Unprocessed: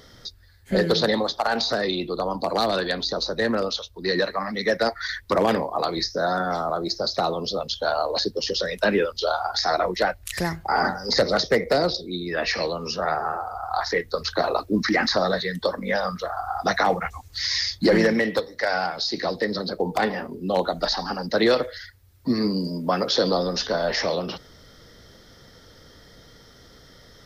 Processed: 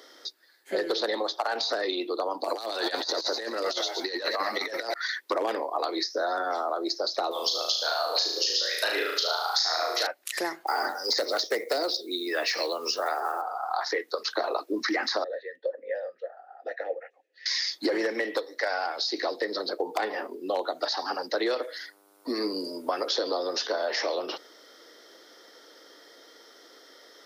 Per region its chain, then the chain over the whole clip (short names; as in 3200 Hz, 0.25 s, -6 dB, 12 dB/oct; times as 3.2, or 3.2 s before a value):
2.44–4.94 high shelf 4200 Hz +11.5 dB + frequency-shifting echo 0.119 s, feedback 62%, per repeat +65 Hz, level -13 dB + negative-ratio compressor -26 dBFS, ratio -0.5
7.31–10.07 tilt +4.5 dB/oct + flutter echo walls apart 6.3 m, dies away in 0.67 s
10.67–13.42 block floating point 7-bit + high shelf 5400 Hz +12 dB
15.24–17.46 vowel filter e + high shelf 2300 Hz -9.5 dB
21.61–23.18 bell 10000 Hz +8.5 dB 0.53 oct + buzz 100 Hz, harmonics 15, -57 dBFS -5 dB/oct
whole clip: Chebyshev high-pass 310 Hz, order 4; compressor 4:1, threshold -25 dBFS